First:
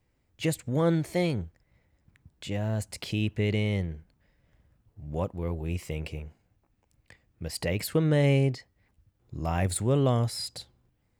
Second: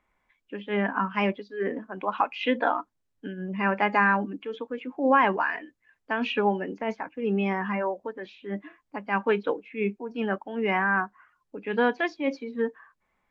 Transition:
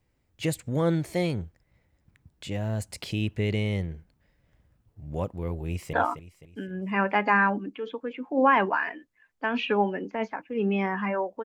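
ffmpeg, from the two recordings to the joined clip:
-filter_complex "[0:a]apad=whole_dur=11.44,atrim=end=11.44,atrim=end=5.932[a];[1:a]atrim=start=2.598:end=8.11[b];[a][b]acrossfade=d=0.004:c1=hsin:c2=hsin,asplit=2[c][d];[d]afade=t=in:st=5.65:d=0.01,afade=t=out:st=5.93:d=0.01,aecho=0:1:260|520|780|1040|1300:0.316228|0.142302|0.0640361|0.0288163|0.0129673[e];[c][e]amix=inputs=2:normalize=0"

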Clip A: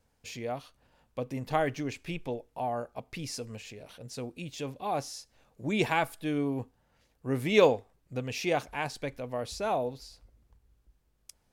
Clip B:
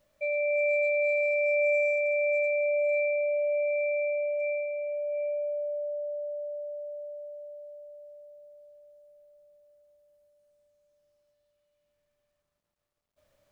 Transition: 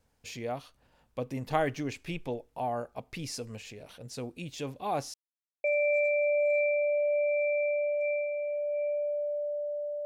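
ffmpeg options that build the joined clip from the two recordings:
-filter_complex "[0:a]apad=whole_dur=10.05,atrim=end=10.05,asplit=2[a][b];[a]atrim=end=5.14,asetpts=PTS-STARTPTS,afade=t=out:st=5.136:d=0.004:c=hsin[c];[b]atrim=start=5.14:end=5.64,asetpts=PTS-STARTPTS,volume=0[d];[1:a]atrim=start=2.03:end=6.44,asetpts=PTS-STARTPTS,afade=t=in:d=0.004:c=hsin[e];[c][d][e]concat=n=3:v=0:a=1"

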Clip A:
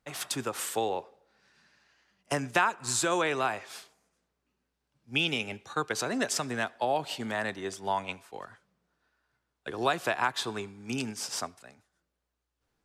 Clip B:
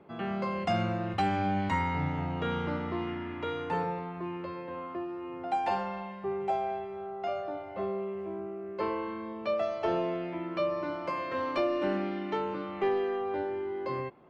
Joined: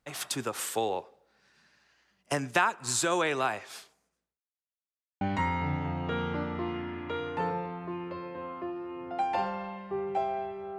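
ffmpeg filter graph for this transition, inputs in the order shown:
-filter_complex "[0:a]apad=whole_dur=10.78,atrim=end=10.78,asplit=2[a][b];[a]atrim=end=4.41,asetpts=PTS-STARTPTS,afade=t=out:st=3.61:d=0.8:c=qsin[c];[b]atrim=start=4.41:end=5.21,asetpts=PTS-STARTPTS,volume=0[d];[1:a]atrim=start=1.54:end=7.11,asetpts=PTS-STARTPTS,afade=t=in:d=0.004:c=hsin[e];[c][d][e]concat=n=3:v=0:a=1"

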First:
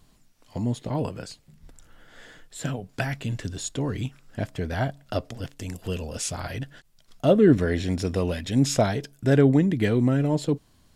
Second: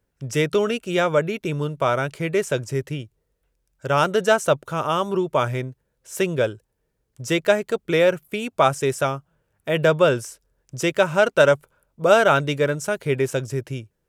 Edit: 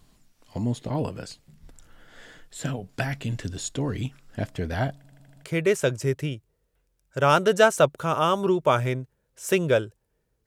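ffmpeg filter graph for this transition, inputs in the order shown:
-filter_complex "[0:a]apad=whole_dur=10.46,atrim=end=10.46,asplit=6[a][b][c][d][e][f];[a]atrim=end=5.042[g];[b]atrim=start=4.958:end=5.042[h];[c]atrim=start=4.958:end=5.042[i];[d]atrim=start=4.958:end=5.042[j];[e]atrim=start=4.958:end=5.042[k];[f]atrim=start=4.958:end=5.042[l];[1:a]atrim=start=2.118:end=7.14[m];[g][h]acrossfade=d=0.004:c1=hsin:c2=hsin[n];[n][i]acrossfade=d=0.004:c1=hsin:c2=hsin[o];[o][j]acrossfade=d=0.004:c1=hsin:c2=hsin[p];[p][k]acrossfade=d=0.004:c1=hsin:c2=hsin[q];[q][l]acrossfade=d=0.004:c1=hsin:c2=hsin[r];[r][m]acrossfade=d=0.004:c1=hsin:c2=hsin"

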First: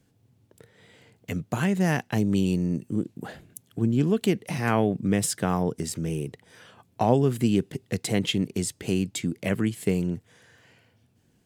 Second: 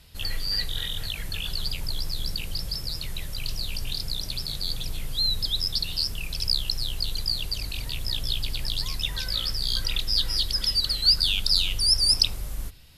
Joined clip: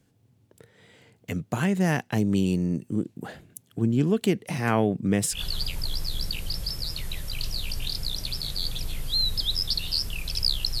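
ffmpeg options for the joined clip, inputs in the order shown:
-filter_complex "[0:a]apad=whole_dur=10.8,atrim=end=10.8,atrim=end=5.4,asetpts=PTS-STARTPTS[a];[1:a]atrim=start=1.35:end=6.85,asetpts=PTS-STARTPTS[b];[a][b]acrossfade=d=0.1:c1=tri:c2=tri"

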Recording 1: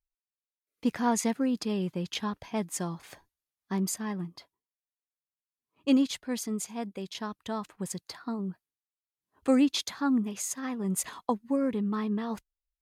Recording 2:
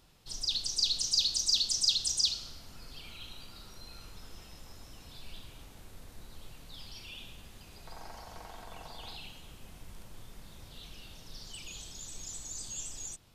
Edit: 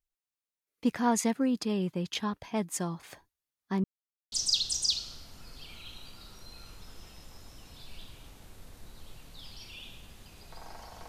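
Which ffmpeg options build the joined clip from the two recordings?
-filter_complex "[0:a]apad=whole_dur=11.08,atrim=end=11.08,asplit=2[a][b];[a]atrim=end=3.84,asetpts=PTS-STARTPTS,afade=t=out:st=3.836:d=0.004:c=hsin[c];[b]atrim=start=3.84:end=4.32,asetpts=PTS-STARTPTS,volume=0[d];[1:a]atrim=start=1.67:end=8.43,asetpts=PTS-STARTPTS,afade=t=in:d=0.004:c=hsin[e];[c][d][e]concat=n=3:v=0:a=1"

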